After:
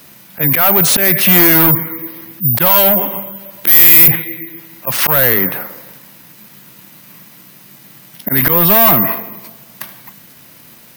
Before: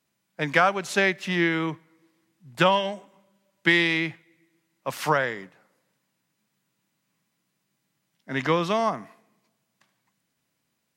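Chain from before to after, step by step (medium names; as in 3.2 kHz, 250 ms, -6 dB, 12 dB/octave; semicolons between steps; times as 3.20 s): dynamic bell 150 Hz, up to +4 dB, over -44 dBFS, Q 2.5; careless resampling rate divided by 3×, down filtered, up zero stuff; spectral gate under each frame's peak -30 dB strong; 3.67–4.08 s: treble shelf 5.6 kHz +9.5 dB; slow attack 329 ms; saturation -25 dBFS, distortion -2 dB; loudness maximiser +33 dB; trim -1 dB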